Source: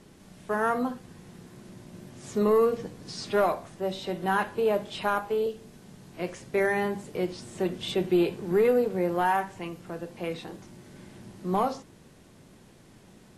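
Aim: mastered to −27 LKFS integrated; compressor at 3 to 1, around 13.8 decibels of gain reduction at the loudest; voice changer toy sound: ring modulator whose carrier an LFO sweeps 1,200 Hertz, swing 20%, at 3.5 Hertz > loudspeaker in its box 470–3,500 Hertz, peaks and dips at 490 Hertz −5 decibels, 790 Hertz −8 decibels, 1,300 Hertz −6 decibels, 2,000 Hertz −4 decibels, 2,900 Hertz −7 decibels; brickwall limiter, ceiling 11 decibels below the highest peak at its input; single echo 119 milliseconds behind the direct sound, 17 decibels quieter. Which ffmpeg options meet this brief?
ffmpeg -i in.wav -af "acompressor=threshold=-38dB:ratio=3,alimiter=level_in=11dB:limit=-24dB:level=0:latency=1,volume=-11dB,aecho=1:1:119:0.141,aeval=exprs='val(0)*sin(2*PI*1200*n/s+1200*0.2/3.5*sin(2*PI*3.5*n/s))':channel_layout=same,highpass=470,equalizer=frequency=490:width_type=q:width=4:gain=-5,equalizer=frequency=790:width_type=q:width=4:gain=-8,equalizer=frequency=1300:width_type=q:width=4:gain=-6,equalizer=frequency=2000:width_type=q:width=4:gain=-4,equalizer=frequency=2900:width_type=q:width=4:gain=-7,lowpass=frequency=3500:width=0.5412,lowpass=frequency=3500:width=1.3066,volume=24.5dB" out.wav

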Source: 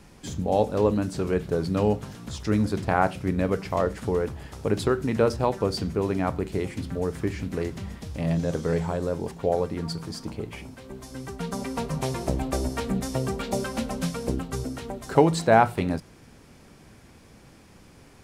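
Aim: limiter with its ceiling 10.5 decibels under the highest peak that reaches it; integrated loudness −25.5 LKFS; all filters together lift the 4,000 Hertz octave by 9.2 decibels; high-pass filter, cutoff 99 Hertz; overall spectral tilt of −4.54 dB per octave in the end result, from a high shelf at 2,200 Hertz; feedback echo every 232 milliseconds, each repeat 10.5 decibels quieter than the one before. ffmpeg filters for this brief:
ffmpeg -i in.wav -af "highpass=99,highshelf=frequency=2200:gain=7,equalizer=frequency=4000:width_type=o:gain=4.5,alimiter=limit=-12dB:level=0:latency=1,aecho=1:1:232|464|696:0.299|0.0896|0.0269,volume=1.5dB" out.wav

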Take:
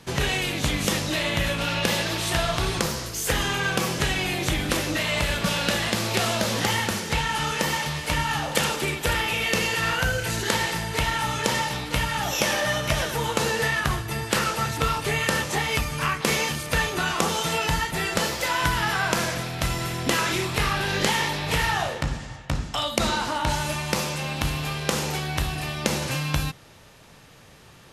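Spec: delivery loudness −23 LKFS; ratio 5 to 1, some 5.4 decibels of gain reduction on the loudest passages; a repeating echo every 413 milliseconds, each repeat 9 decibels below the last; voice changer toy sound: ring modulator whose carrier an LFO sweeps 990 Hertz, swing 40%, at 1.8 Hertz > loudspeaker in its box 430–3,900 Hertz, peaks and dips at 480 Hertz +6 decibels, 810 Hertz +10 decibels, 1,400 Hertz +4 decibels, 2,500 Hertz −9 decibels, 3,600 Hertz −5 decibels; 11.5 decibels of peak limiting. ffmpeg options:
ffmpeg -i in.wav -af "acompressor=threshold=-25dB:ratio=5,alimiter=limit=-19dB:level=0:latency=1,aecho=1:1:413|826|1239|1652:0.355|0.124|0.0435|0.0152,aeval=exprs='val(0)*sin(2*PI*990*n/s+990*0.4/1.8*sin(2*PI*1.8*n/s))':channel_layout=same,highpass=430,equalizer=frequency=480:width_type=q:width=4:gain=6,equalizer=frequency=810:width_type=q:width=4:gain=10,equalizer=frequency=1400:width_type=q:width=4:gain=4,equalizer=frequency=2500:width_type=q:width=4:gain=-9,equalizer=frequency=3600:width_type=q:width=4:gain=-5,lowpass=frequency=3900:width=0.5412,lowpass=frequency=3900:width=1.3066,volume=7.5dB" out.wav

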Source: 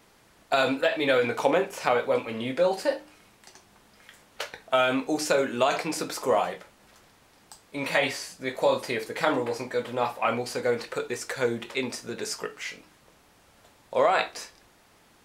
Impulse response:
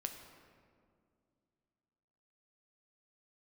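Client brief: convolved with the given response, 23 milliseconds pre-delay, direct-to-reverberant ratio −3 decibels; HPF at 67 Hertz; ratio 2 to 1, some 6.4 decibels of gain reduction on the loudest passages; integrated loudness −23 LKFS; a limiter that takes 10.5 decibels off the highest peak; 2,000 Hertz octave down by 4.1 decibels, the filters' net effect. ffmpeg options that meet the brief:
-filter_complex "[0:a]highpass=67,equalizer=frequency=2000:width_type=o:gain=-5.5,acompressor=threshold=-30dB:ratio=2,alimiter=limit=-23dB:level=0:latency=1,asplit=2[link_01][link_02];[1:a]atrim=start_sample=2205,adelay=23[link_03];[link_02][link_03]afir=irnorm=-1:irlink=0,volume=4.5dB[link_04];[link_01][link_04]amix=inputs=2:normalize=0,volume=6.5dB"

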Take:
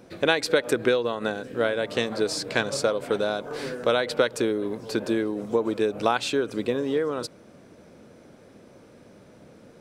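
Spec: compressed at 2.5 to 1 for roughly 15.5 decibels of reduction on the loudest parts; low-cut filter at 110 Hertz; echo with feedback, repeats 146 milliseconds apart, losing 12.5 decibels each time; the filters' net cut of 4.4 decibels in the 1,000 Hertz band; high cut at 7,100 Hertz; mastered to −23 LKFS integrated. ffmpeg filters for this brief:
ffmpeg -i in.wav -af "highpass=110,lowpass=7100,equalizer=frequency=1000:width_type=o:gain=-6.5,acompressor=threshold=-43dB:ratio=2.5,aecho=1:1:146|292|438:0.237|0.0569|0.0137,volume=17.5dB" out.wav

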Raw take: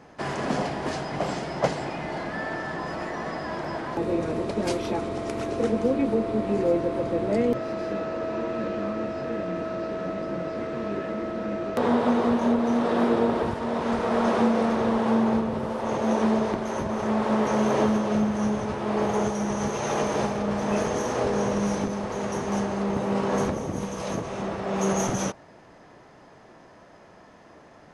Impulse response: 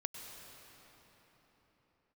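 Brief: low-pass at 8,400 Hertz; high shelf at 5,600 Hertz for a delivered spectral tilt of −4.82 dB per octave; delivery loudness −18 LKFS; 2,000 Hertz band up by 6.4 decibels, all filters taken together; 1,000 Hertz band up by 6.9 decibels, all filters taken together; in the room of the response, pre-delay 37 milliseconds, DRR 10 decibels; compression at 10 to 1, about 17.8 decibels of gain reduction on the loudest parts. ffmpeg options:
-filter_complex "[0:a]lowpass=8400,equalizer=frequency=1000:width_type=o:gain=7.5,equalizer=frequency=2000:width_type=o:gain=6,highshelf=frequency=5600:gain=-5.5,acompressor=threshold=-32dB:ratio=10,asplit=2[link_01][link_02];[1:a]atrim=start_sample=2205,adelay=37[link_03];[link_02][link_03]afir=irnorm=-1:irlink=0,volume=-9dB[link_04];[link_01][link_04]amix=inputs=2:normalize=0,volume=17dB"

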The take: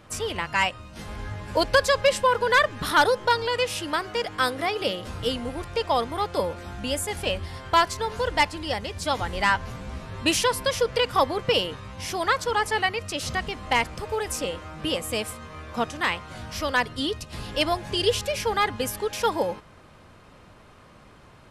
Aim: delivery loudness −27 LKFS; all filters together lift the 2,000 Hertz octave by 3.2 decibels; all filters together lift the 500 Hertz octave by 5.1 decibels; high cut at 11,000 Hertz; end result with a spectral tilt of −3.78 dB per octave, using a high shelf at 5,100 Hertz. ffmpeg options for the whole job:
ffmpeg -i in.wav -af "lowpass=11000,equalizer=frequency=500:width_type=o:gain=5.5,equalizer=frequency=2000:width_type=o:gain=4.5,highshelf=frequency=5100:gain=-5.5,volume=-5dB" out.wav

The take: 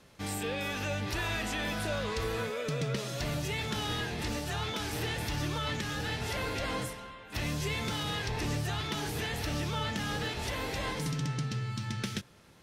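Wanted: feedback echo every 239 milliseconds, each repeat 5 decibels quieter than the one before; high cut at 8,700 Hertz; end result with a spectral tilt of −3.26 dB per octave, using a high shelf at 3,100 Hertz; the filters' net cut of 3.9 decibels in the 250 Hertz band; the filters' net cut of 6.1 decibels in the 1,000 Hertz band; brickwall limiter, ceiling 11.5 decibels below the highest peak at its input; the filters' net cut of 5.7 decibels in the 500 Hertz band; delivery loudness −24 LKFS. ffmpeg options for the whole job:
ffmpeg -i in.wav -af "lowpass=8700,equalizer=frequency=250:width_type=o:gain=-4.5,equalizer=frequency=500:width_type=o:gain=-4,equalizer=frequency=1000:width_type=o:gain=-7.5,highshelf=frequency=3100:gain=6,alimiter=level_in=6.5dB:limit=-24dB:level=0:latency=1,volume=-6.5dB,aecho=1:1:239|478|717|956|1195|1434|1673:0.562|0.315|0.176|0.0988|0.0553|0.031|0.0173,volume=13dB" out.wav

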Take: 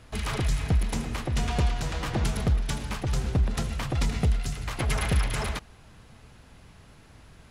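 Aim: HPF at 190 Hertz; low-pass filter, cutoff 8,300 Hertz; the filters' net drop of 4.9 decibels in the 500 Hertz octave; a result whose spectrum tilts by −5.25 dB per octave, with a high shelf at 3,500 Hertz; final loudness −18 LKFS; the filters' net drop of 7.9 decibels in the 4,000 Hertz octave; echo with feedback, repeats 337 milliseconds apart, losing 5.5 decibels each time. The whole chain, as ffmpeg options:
ffmpeg -i in.wav -af "highpass=190,lowpass=8300,equalizer=frequency=500:width_type=o:gain=-6,highshelf=frequency=3500:gain=-6.5,equalizer=frequency=4000:width_type=o:gain=-6,aecho=1:1:337|674|1011|1348|1685|2022|2359:0.531|0.281|0.149|0.079|0.0419|0.0222|0.0118,volume=17.5dB" out.wav

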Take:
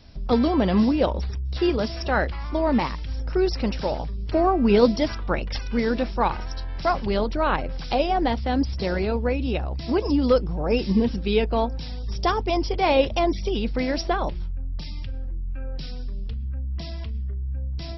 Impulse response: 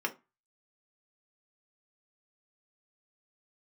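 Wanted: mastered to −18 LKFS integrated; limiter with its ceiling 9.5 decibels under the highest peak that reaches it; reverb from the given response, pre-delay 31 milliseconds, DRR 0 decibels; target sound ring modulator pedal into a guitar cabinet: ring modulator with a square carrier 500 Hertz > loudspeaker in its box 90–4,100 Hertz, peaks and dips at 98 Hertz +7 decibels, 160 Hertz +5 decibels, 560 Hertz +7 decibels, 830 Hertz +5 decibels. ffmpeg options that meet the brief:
-filter_complex "[0:a]alimiter=limit=-14.5dB:level=0:latency=1,asplit=2[link_01][link_02];[1:a]atrim=start_sample=2205,adelay=31[link_03];[link_02][link_03]afir=irnorm=-1:irlink=0,volume=-6dB[link_04];[link_01][link_04]amix=inputs=2:normalize=0,aeval=exprs='val(0)*sgn(sin(2*PI*500*n/s))':channel_layout=same,highpass=90,equalizer=frequency=98:width_type=q:width=4:gain=7,equalizer=frequency=160:width_type=q:width=4:gain=5,equalizer=frequency=560:width_type=q:width=4:gain=7,equalizer=frequency=830:width_type=q:width=4:gain=5,lowpass=frequency=4100:width=0.5412,lowpass=frequency=4100:width=1.3066,volume=3dB"

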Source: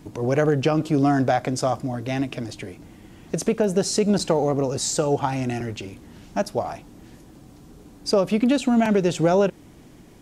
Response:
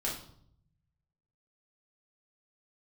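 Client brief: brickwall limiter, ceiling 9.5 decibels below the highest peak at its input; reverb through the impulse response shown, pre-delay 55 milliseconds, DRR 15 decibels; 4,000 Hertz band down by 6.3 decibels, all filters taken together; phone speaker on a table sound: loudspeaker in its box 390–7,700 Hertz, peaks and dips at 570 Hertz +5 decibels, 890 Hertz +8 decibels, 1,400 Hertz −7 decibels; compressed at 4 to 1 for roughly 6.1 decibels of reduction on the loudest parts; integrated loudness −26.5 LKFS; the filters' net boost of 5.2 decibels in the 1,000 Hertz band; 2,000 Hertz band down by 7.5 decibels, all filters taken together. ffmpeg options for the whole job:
-filter_complex "[0:a]equalizer=frequency=1000:width_type=o:gain=3,equalizer=frequency=2000:width_type=o:gain=-6.5,equalizer=frequency=4000:width_type=o:gain=-7,acompressor=threshold=-22dB:ratio=4,alimiter=limit=-20.5dB:level=0:latency=1,asplit=2[link_01][link_02];[1:a]atrim=start_sample=2205,adelay=55[link_03];[link_02][link_03]afir=irnorm=-1:irlink=0,volume=-19dB[link_04];[link_01][link_04]amix=inputs=2:normalize=0,highpass=frequency=390:width=0.5412,highpass=frequency=390:width=1.3066,equalizer=frequency=570:width_type=q:width=4:gain=5,equalizer=frequency=890:width_type=q:width=4:gain=8,equalizer=frequency=1400:width_type=q:width=4:gain=-7,lowpass=frequency=7700:width=0.5412,lowpass=frequency=7700:width=1.3066,volume=4.5dB"

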